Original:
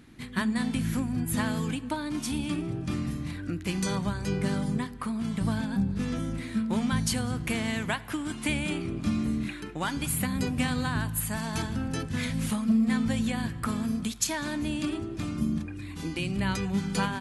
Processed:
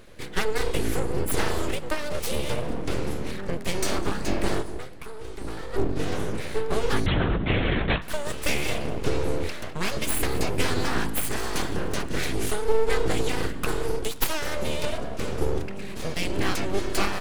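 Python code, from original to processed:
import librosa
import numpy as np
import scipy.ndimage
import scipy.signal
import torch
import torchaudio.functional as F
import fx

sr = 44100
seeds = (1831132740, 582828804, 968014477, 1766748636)

y = fx.comb_fb(x, sr, f0_hz=130.0, decay_s=0.65, harmonics='all', damping=0.0, mix_pct=70, at=(4.61, 5.73), fade=0.02)
y = np.abs(y)
y = fx.echo_feedback(y, sr, ms=226, feedback_pct=39, wet_db=-23.0)
y = fx.lpc_vocoder(y, sr, seeds[0], excitation='whisper', order=10, at=(7.06, 8.02))
y = F.gain(torch.from_numpy(y), 6.0).numpy()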